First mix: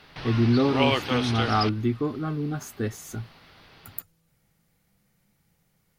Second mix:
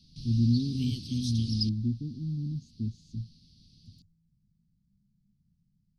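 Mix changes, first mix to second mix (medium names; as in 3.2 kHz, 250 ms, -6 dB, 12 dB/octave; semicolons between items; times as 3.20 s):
speech: add tape spacing loss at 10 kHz 35 dB; master: add elliptic band-stop 220–4600 Hz, stop band 50 dB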